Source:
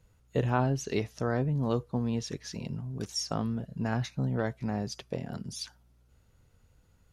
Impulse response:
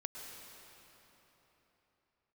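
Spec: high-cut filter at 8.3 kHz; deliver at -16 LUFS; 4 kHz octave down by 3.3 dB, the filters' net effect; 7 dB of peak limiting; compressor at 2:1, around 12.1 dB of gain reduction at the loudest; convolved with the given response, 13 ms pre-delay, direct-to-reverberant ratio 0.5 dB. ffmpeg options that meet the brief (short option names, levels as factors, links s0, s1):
-filter_complex "[0:a]lowpass=8300,equalizer=f=4000:t=o:g=-4.5,acompressor=threshold=0.00562:ratio=2,alimiter=level_in=2.66:limit=0.0631:level=0:latency=1,volume=0.376,asplit=2[s0][s1];[1:a]atrim=start_sample=2205,adelay=13[s2];[s1][s2]afir=irnorm=-1:irlink=0,volume=1.12[s3];[s0][s3]amix=inputs=2:normalize=0,volume=17.8"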